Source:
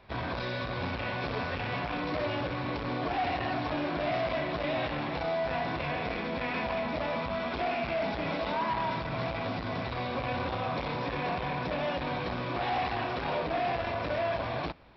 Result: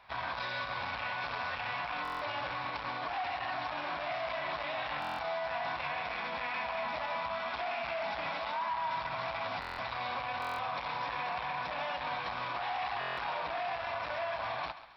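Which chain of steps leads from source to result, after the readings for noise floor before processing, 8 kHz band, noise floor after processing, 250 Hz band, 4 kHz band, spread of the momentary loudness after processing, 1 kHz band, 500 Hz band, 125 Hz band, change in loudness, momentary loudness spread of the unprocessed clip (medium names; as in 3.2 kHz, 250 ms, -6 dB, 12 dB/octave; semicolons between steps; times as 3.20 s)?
-35 dBFS, no reading, -40 dBFS, -16.5 dB, -2.0 dB, 1 LU, -1.5 dB, -7.5 dB, -15.0 dB, -3.5 dB, 3 LU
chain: resonant low shelf 590 Hz -12.5 dB, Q 1.5; peak limiter -27.5 dBFS, peak gain reduction 7 dB; on a send: thinning echo 134 ms, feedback 41%, high-pass 420 Hz, level -13 dB; on the sum: buffer glitch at 2.03/5.00/9.60/10.40/12.99 s, samples 1024, times 7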